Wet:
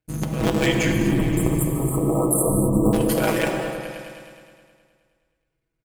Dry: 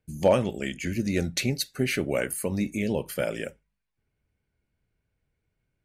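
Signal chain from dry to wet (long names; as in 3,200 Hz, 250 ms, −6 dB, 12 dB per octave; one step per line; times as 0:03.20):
sub-harmonics by changed cycles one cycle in 3, muted
noise gate −45 dBFS, range −12 dB
parametric band 180 Hz −9.5 dB 0.22 octaves
comb filter 6.2 ms, depth 85%
compressor whose output falls as the input rises −28 dBFS, ratio −0.5
0:00.92–0:02.93: linear-phase brick-wall band-stop 1,300–7,200 Hz
echo whose low-pass opens from repeat to repeat 105 ms, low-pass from 400 Hz, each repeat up 1 octave, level −3 dB
reverb whose tail is shaped and stops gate 290 ms flat, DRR 4 dB
level +6.5 dB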